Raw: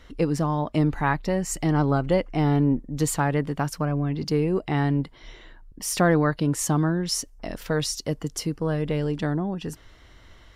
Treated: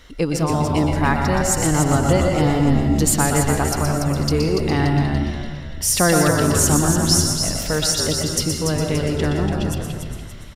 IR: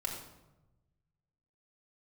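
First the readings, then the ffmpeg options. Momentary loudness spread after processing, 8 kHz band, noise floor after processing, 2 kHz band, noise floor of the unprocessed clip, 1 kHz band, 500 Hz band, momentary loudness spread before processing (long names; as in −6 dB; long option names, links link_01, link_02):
8 LU, +12.5 dB, −32 dBFS, +6.5 dB, −51 dBFS, +6.0 dB, +5.0 dB, 8 LU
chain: -filter_complex "[0:a]highshelf=frequency=3100:gain=9,asplit=6[link_01][link_02][link_03][link_04][link_05][link_06];[link_02]adelay=288,afreqshift=-67,volume=-6dB[link_07];[link_03]adelay=576,afreqshift=-134,volume=-13.3dB[link_08];[link_04]adelay=864,afreqshift=-201,volume=-20.7dB[link_09];[link_05]adelay=1152,afreqshift=-268,volume=-28dB[link_10];[link_06]adelay=1440,afreqshift=-335,volume=-35.3dB[link_11];[link_01][link_07][link_08][link_09][link_10][link_11]amix=inputs=6:normalize=0,asplit=2[link_12][link_13];[1:a]atrim=start_sample=2205,adelay=120[link_14];[link_13][link_14]afir=irnorm=-1:irlink=0,volume=-4.5dB[link_15];[link_12][link_15]amix=inputs=2:normalize=0,volume=2dB"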